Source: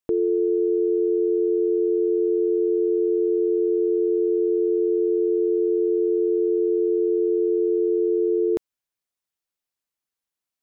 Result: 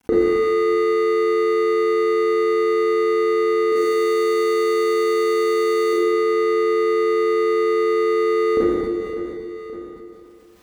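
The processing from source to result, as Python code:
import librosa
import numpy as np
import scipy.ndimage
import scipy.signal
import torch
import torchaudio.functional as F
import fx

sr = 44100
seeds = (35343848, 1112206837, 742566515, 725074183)

y = scipy.ndimage.median_filter(x, 41, mode='constant')
y = scipy.signal.sosfilt(scipy.signal.butter(2, 51.0, 'highpass', fs=sr, output='sos'), y)
y = fx.low_shelf(y, sr, hz=87.0, db=11.0)
y = y + 0.43 * np.pad(y, (int(4.0 * sr / 1000.0), 0))[:len(y)]
y = fx.bass_treble(y, sr, bass_db=-5, treble_db=11, at=(3.72, 5.93))
y = fx.echo_feedback(y, sr, ms=563, feedback_pct=29, wet_db=-20)
y = fx.rev_schroeder(y, sr, rt60_s=1.2, comb_ms=29, drr_db=-9.5)
y = fx.env_flatten(y, sr, amount_pct=50)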